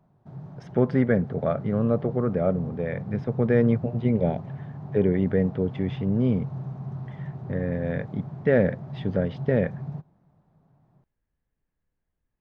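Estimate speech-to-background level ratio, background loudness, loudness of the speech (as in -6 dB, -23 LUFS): 11.0 dB, -36.5 LUFS, -25.5 LUFS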